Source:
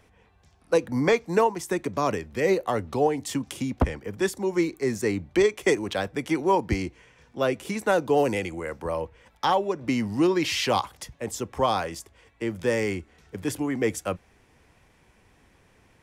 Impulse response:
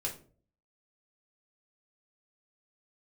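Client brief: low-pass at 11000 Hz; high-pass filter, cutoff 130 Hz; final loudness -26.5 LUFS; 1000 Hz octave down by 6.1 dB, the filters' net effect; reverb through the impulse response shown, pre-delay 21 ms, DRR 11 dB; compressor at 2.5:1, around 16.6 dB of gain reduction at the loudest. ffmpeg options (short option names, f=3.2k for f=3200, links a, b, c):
-filter_complex "[0:a]highpass=130,lowpass=11k,equalizer=f=1k:t=o:g=-8,acompressor=threshold=-44dB:ratio=2.5,asplit=2[a][b];[1:a]atrim=start_sample=2205,adelay=21[c];[b][c]afir=irnorm=-1:irlink=0,volume=-13dB[d];[a][d]amix=inputs=2:normalize=0,volume=15dB"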